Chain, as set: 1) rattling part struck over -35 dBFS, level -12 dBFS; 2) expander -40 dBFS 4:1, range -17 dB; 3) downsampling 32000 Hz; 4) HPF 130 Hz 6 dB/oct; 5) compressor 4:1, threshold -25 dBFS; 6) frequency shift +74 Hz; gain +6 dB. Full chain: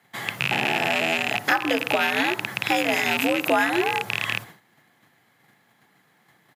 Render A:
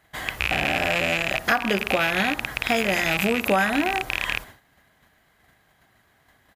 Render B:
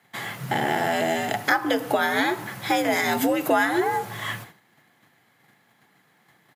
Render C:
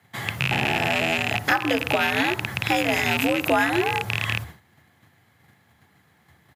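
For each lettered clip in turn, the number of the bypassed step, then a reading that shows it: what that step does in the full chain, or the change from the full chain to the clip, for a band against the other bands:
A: 6, 125 Hz band +3.5 dB; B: 1, 4 kHz band -6.5 dB; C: 4, 125 Hz band +8.5 dB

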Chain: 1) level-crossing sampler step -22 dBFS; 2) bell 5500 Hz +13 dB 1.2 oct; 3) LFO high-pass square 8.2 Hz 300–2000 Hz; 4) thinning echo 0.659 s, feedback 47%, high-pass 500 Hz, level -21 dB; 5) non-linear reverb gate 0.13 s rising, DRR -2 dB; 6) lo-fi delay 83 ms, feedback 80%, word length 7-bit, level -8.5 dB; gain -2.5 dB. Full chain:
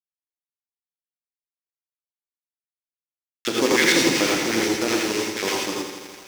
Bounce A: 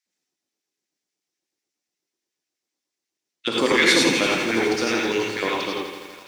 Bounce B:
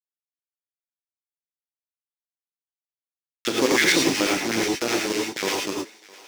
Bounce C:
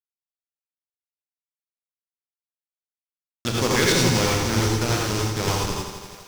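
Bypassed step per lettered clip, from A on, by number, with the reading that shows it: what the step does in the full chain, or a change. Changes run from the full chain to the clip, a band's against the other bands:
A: 1, distortion -3 dB; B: 6, loudness change -1.5 LU; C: 3, 125 Hz band +16.0 dB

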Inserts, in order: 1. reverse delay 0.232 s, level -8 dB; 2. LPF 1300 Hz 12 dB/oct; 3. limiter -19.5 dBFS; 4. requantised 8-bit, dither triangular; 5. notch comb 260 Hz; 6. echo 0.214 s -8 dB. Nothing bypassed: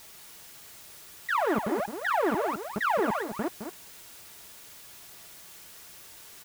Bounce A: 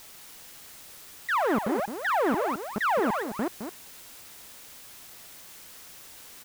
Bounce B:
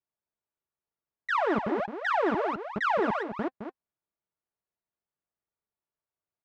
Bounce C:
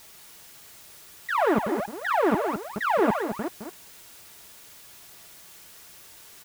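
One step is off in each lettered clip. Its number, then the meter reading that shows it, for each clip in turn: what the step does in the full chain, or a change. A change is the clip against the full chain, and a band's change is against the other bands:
5, crest factor change -3.0 dB; 4, distortion -16 dB; 3, mean gain reduction 2.0 dB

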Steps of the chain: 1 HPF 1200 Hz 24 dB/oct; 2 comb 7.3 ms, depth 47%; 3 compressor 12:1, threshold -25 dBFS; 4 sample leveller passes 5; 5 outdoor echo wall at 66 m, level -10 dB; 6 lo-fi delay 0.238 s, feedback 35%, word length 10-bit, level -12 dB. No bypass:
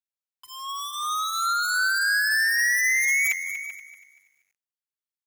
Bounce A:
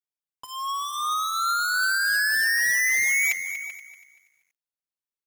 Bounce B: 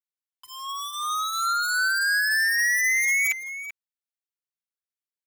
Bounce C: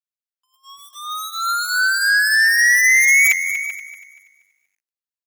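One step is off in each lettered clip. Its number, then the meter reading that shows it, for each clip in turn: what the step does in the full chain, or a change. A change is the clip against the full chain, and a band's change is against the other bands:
1, 1 kHz band +1.5 dB; 6, crest factor change -2.0 dB; 3, mean gain reduction 1.5 dB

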